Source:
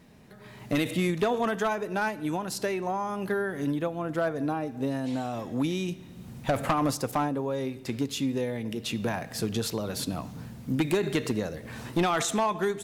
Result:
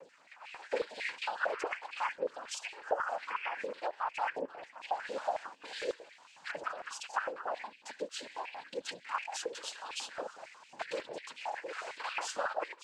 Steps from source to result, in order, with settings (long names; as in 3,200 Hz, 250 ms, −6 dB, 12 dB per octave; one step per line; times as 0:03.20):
phase shifter 0.45 Hz, delay 4.3 ms, feedback 80%
downward compressor 6 to 1, threshold −29 dBFS, peak gain reduction 15.5 dB
cochlear-implant simulation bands 8
high-pass on a step sequencer 11 Hz 530–2,500 Hz
level −6.5 dB